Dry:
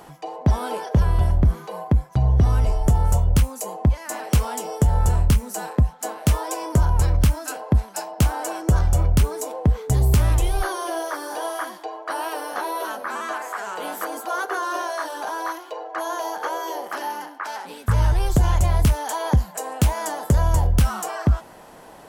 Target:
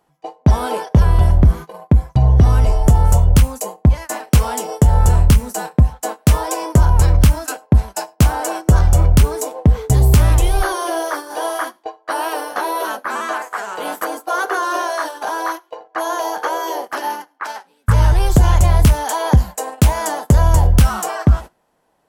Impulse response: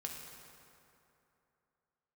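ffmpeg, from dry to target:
-filter_complex "[0:a]agate=range=0.0501:threshold=0.0316:ratio=16:detection=peak,asplit=2[s0][s1];[1:a]atrim=start_sample=2205,afade=t=out:st=0.16:d=0.01,atrim=end_sample=7497[s2];[s1][s2]afir=irnorm=-1:irlink=0,volume=0.15[s3];[s0][s3]amix=inputs=2:normalize=0,volume=1.88"

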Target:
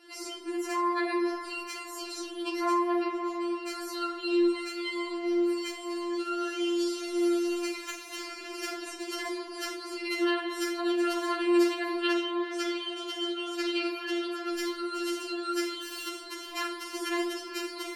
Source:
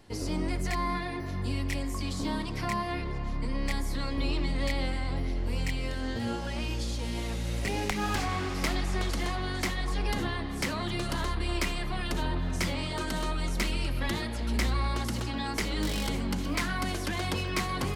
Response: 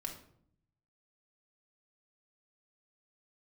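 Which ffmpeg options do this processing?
-filter_complex "[0:a]asettb=1/sr,asplit=3[s0][s1][s2];[s0]atrim=end=12.014[s3];[s1]atrim=start=12.01:end=14.52,asetpts=PTS-STARTPTS,afade=t=in:d=0.004:c=qsin,afade=t=out:st=2.506:d=0.004:c=qsin,acrossover=split=280 6000:gain=0.158 1 0.251[s4][s5][s6];[s4][s5][s6]amix=inputs=3:normalize=0[s7];[s2]atrim=start=14.516[s8];[s3][s7]acrossfade=d=0.004:c1=hsin:c2=qsin[s9];[s9][s8]acrossfade=d=0.004:c1=qsin:c2=hsin,highpass=120,acompressor=threshold=0.0224:ratio=6[s10];[1:a]atrim=start_sample=2205[s11];[s10][s11]afir=irnorm=-1:irlink=0,afftfilt=real='re*4*eq(mod(b,16),0)':imag='im*4*eq(mod(b,16),0)':win_size=2048:overlap=0.75,volume=2.24"

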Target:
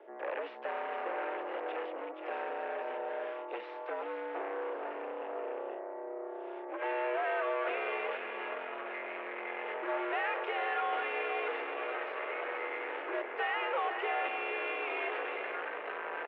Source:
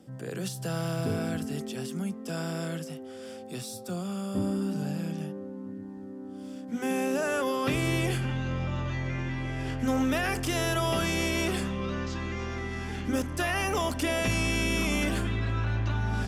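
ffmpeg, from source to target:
-filter_complex "[0:a]aeval=exprs='0.133*(cos(1*acos(clip(val(0)/0.133,-1,1)))-cos(1*PI/2))+0.0237*(cos(8*acos(clip(val(0)/0.133,-1,1)))-cos(8*PI/2))':c=same,asplit=2[s0][s1];[s1]aecho=0:1:477:0.335[s2];[s0][s2]amix=inputs=2:normalize=0,acompressor=threshold=0.0447:ratio=6,asoftclip=type=tanh:threshold=0.0355,highpass=f=340:t=q:w=0.5412,highpass=f=340:t=q:w=1.307,lowpass=f=2500:t=q:w=0.5176,lowpass=f=2500:t=q:w=0.7071,lowpass=f=2500:t=q:w=1.932,afreqshift=97,volume=1.78"

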